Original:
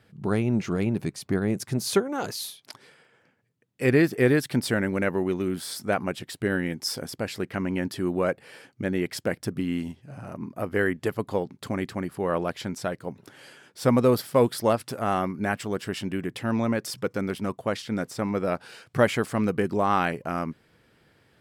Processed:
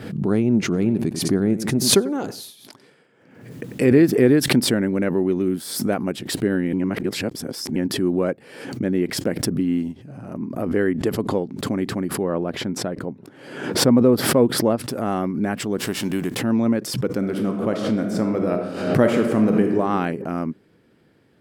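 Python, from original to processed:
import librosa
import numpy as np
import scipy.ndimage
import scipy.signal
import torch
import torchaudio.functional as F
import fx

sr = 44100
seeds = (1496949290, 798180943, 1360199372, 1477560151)

y = fx.echo_feedback(x, sr, ms=94, feedback_pct=21, wet_db=-16, at=(0.72, 4.02), fade=0.02)
y = fx.high_shelf(y, sr, hz=9200.0, db=7.5, at=(5.47, 6.12))
y = fx.lowpass(y, sr, hz=11000.0, slope=12, at=(10.63, 11.59))
y = fx.high_shelf(y, sr, hz=3000.0, db=-10.5, at=(12.23, 14.78))
y = fx.envelope_flatten(y, sr, power=0.6, at=(15.77, 16.4), fade=0.02)
y = fx.reverb_throw(y, sr, start_s=17.17, length_s=2.58, rt60_s=1.3, drr_db=3.0)
y = fx.edit(y, sr, fx.reverse_span(start_s=6.73, length_s=1.03), tone=tone)
y = fx.peak_eq(y, sr, hz=270.0, db=11.0, octaves=2.0)
y = fx.pre_swell(y, sr, db_per_s=65.0)
y = F.gain(torch.from_numpy(y), -3.5).numpy()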